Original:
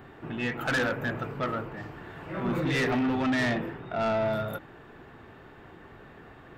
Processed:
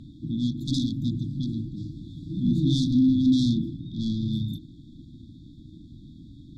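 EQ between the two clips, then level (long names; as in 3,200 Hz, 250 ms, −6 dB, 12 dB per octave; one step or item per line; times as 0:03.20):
linear-phase brick-wall band-stop 330–3,300 Hz
high-frequency loss of the air 76 metres
+8.0 dB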